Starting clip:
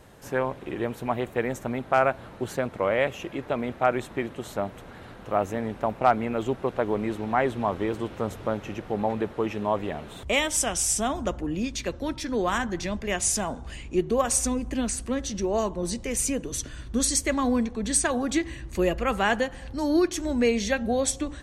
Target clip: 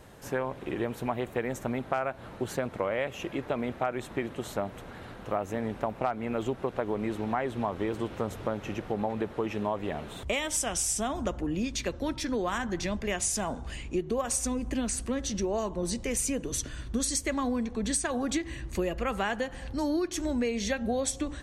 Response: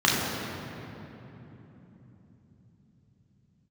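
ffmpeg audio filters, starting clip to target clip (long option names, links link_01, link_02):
-af "acompressor=threshold=-26dB:ratio=6"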